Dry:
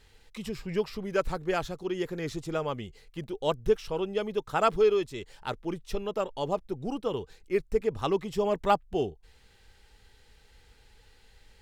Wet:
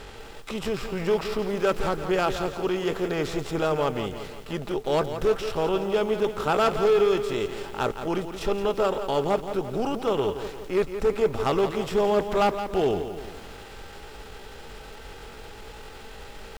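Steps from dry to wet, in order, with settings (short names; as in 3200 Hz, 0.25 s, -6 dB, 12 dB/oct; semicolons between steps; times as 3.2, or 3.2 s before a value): per-bin compression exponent 0.6; tempo 0.7×; overloaded stage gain 18 dB; lo-fi delay 0.171 s, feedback 55%, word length 8-bit, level -9.5 dB; gain +1.5 dB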